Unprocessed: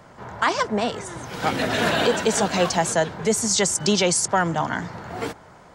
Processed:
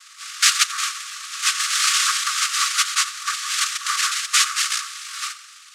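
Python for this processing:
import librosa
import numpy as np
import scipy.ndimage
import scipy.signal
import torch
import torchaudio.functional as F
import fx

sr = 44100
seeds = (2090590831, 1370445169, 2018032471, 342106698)

p1 = fx.tracing_dist(x, sr, depth_ms=0.2)
p2 = fx.high_shelf(p1, sr, hz=4500.0, db=-9.0)
p3 = fx.noise_vocoder(p2, sr, seeds[0], bands=2)
p4 = fx.brickwall_highpass(p3, sr, low_hz=1100.0)
p5 = p4 + fx.echo_feedback(p4, sr, ms=88, feedback_pct=59, wet_db=-17.0, dry=0)
y = F.gain(torch.from_numpy(p5), 7.0).numpy()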